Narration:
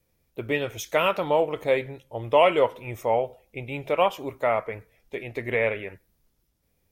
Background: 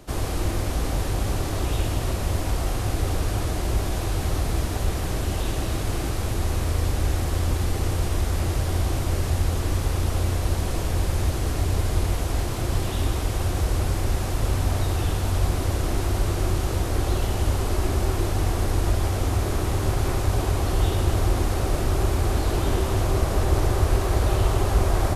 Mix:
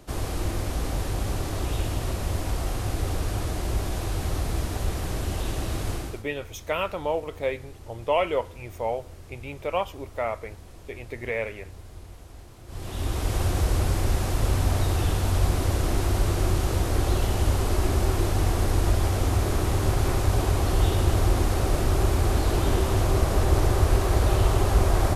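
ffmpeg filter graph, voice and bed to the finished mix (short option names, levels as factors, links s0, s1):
-filter_complex "[0:a]adelay=5750,volume=0.562[s0];[1:a]volume=7.5,afade=t=out:st=5.9:d=0.34:silence=0.133352,afade=t=in:st=12.66:d=0.7:silence=0.0944061[s1];[s0][s1]amix=inputs=2:normalize=0"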